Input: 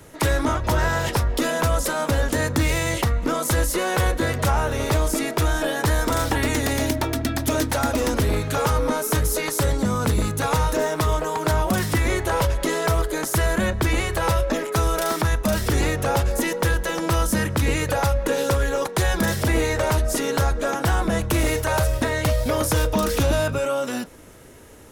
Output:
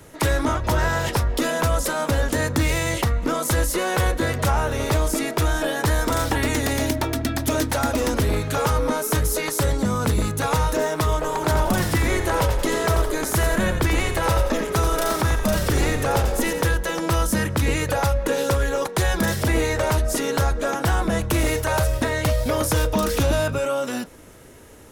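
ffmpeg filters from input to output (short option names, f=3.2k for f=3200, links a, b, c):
-filter_complex "[0:a]asettb=1/sr,asplit=3[a][b][c];[a]atrim=end=11.144[d];[b]atrim=start=11.14:end=16.63,asetpts=PTS-STARTPTS,afade=t=in:d=0.004:c=qsin,afade=t=out:st=5.486:d=0.004:c=qsin,asplit=6[e][f][g][h][i][j];[f]adelay=87,afreqshift=-37,volume=-8dB[k];[g]adelay=174,afreqshift=-74,volume=-14.9dB[l];[h]adelay=261,afreqshift=-111,volume=-21.9dB[m];[i]adelay=348,afreqshift=-148,volume=-28.8dB[n];[j]adelay=435,afreqshift=-185,volume=-35.7dB[o];[e][k][l][m][n][o]amix=inputs=6:normalize=0,atrim=end_sample=242109[p];[c]atrim=start=16.626[q];[d][p]acrossfade=d=0.004:c1=hsin:c2=qsin[r];[r][q]acrossfade=d=0.004:c1=qsin:c2=hsin"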